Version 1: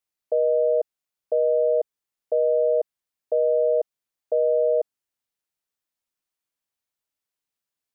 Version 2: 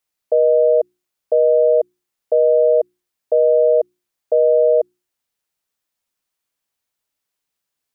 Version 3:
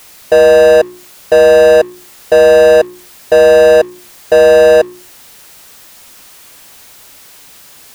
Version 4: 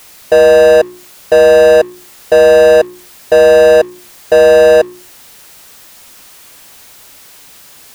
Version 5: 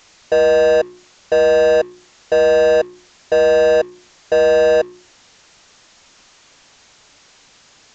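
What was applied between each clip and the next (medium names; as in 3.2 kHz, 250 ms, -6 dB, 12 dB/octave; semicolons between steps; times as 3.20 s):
hum notches 60/120/180/240/300/360 Hz; trim +7 dB
power-law waveshaper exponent 0.5; trim +6 dB
no audible change
resampled via 16 kHz; trim -7 dB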